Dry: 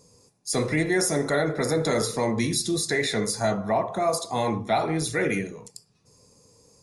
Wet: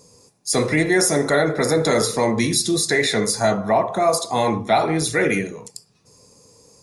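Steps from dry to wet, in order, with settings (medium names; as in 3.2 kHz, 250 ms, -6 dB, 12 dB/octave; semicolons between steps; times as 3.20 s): bass shelf 160 Hz -5 dB; trim +6.5 dB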